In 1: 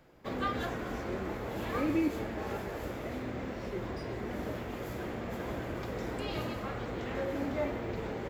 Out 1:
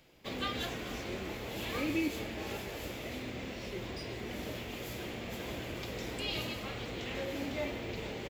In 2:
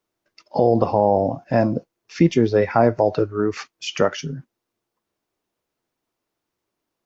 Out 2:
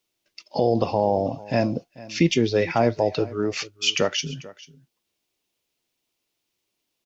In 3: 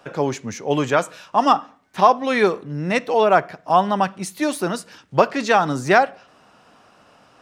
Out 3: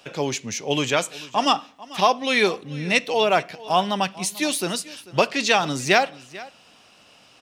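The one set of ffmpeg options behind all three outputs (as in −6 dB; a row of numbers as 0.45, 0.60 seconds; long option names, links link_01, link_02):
-filter_complex "[0:a]highshelf=frequency=2000:width_type=q:width=1.5:gain=9,asplit=2[link_01][link_02];[link_02]aecho=0:1:442:0.106[link_03];[link_01][link_03]amix=inputs=2:normalize=0,volume=-3.5dB"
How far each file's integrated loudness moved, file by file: −2.0, −3.5, −2.5 LU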